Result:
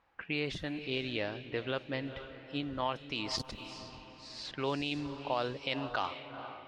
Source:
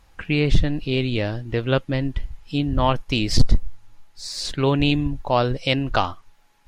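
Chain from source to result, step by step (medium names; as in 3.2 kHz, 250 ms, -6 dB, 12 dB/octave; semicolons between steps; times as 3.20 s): on a send: echo that smears into a reverb 462 ms, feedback 49%, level -13.5 dB; on the sum: level-controlled noise filter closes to 2 kHz, open at -10.5 dBFS; peak limiter -12.5 dBFS, peak gain reduction 8.5 dB; high-pass 530 Hz 6 dB/octave; trim -7 dB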